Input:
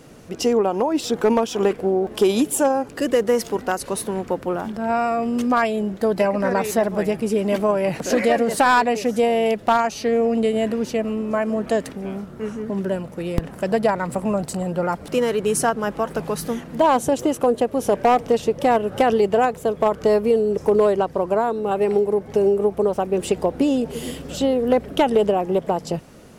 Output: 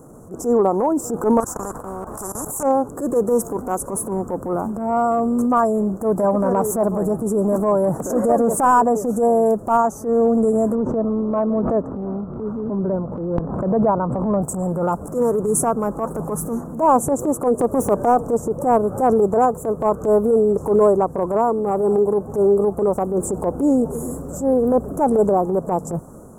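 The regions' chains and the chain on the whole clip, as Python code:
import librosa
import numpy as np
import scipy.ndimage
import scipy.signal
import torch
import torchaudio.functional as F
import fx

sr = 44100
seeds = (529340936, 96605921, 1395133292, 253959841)

y = fx.chain(x, sr, fx.high_shelf(hz=5300.0, db=-6.5),
    fx.level_steps(step_db=22),
    fx.spectral_comp(ratio=4.0), at=(1.4, 2.63))
y = fx.chain(y, sr, fx.lowpass(hz=1500.0, slope=12),
    fx.pre_swell(db_per_s=92.0), at=(10.75, 14.42))
y = fx.chain(y, sr, fx.self_delay(depth_ms=0.097),
    fx.band_squash(depth_pct=100), at=(17.59, 18.25))
y = scipy.signal.sosfilt(scipy.signal.ellip(3, 1.0, 50, [1200.0, 7400.0], 'bandstop', fs=sr, output='sos'), y)
y = fx.transient(y, sr, attack_db=-10, sustain_db=2)
y = y * 10.0 ** (4.0 / 20.0)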